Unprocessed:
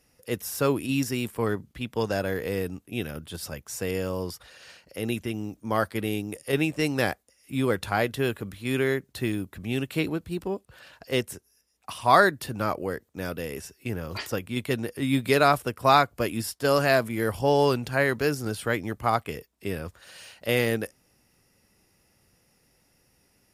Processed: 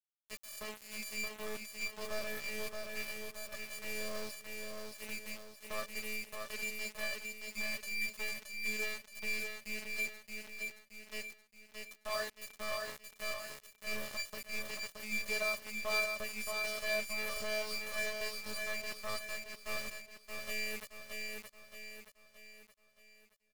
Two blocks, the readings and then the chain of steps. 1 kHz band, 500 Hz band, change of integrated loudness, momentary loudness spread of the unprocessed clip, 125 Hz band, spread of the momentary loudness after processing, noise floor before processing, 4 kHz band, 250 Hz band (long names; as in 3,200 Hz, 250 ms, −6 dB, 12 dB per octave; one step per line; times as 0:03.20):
−21.0 dB, −17.0 dB, −12.5 dB, 15 LU, −29.5 dB, 12 LU, −67 dBFS, −7.0 dB, −23.5 dB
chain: time-frequency box erased 0:07.37–0:08.08, 270–1,800 Hz
dynamic equaliser 310 Hz, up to +5 dB, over −40 dBFS, Q 2.7
in parallel at +0.5 dB: brickwall limiter −15 dBFS, peak gain reduction 11.5 dB
on the sum: phases set to zero 214 Hz
tuned comb filter 590 Hz, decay 0.19 s, harmonics all, mix 100%
centre clipping without the shift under −40 dBFS
on a send: repeating echo 623 ms, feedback 46%, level −4 dB
on the sum: level +1.5 dB